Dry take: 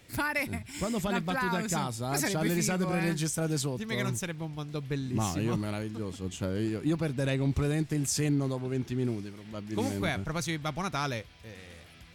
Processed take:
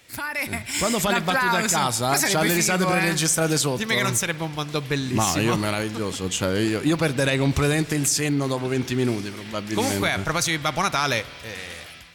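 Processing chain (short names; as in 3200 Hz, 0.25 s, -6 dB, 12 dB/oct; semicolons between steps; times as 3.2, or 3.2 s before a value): low shelf 490 Hz -11.5 dB; 7.94–8.77 compressor 5:1, threshold -35 dBFS, peak gain reduction 7.5 dB; limiter -27.5 dBFS, peak gain reduction 8.5 dB; AGC gain up to 10.5 dB; spring tank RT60 1.8 s, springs 49 ms, chirp 55 ms, DRR 18 dB; gain +6 dB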